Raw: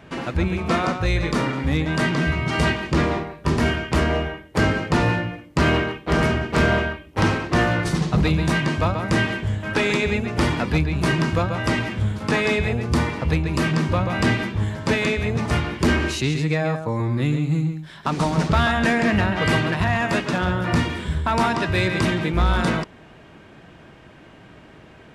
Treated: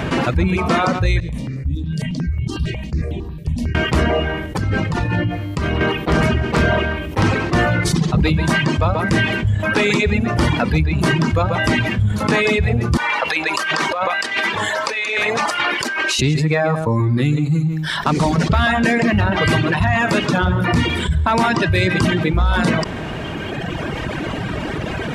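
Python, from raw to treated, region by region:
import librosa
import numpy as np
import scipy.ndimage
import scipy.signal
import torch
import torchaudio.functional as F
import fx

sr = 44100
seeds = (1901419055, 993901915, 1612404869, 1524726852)

y = fx.chain(x, sr, fx.tone_stack(knobs='10-0-1'),
    fx.notch(hz=1400.0, q=6.1),
    fx.phaser_held(hz=11.0, low_hz=250.0, high_hz=4900.0), at=(1.2, 3.75))
y = fx.chain(y, sr, fx.low_shelf(hz=89.0, db=10.0),
    fx.over_compress(threshold_db=-21.0, ratio=-1.0),
    fx.comb_fb(f0_hz=100.0, decay_s=1.6, harmonics='all', damping=0.0, mix_pct=70), at=(4.46, 5.81))
y = fx.chain(y, sr, fx.highpass(hz=740.0, slope=12),
    fx.over_compress(threshold_db=-31.0, ratio=-0.5),
    fx.high_shelf(hz=8100.0, db=-6.0), at=(12.97, 16.19))
y = fx.dereverb_blind(y, sr, rt60_s=1.8)
y = fx.peak_eq(y, sr, hz=78.0, db=3.0, octaves=2.8)
y = fx.env_flatten(y, sr, amount_pct=70)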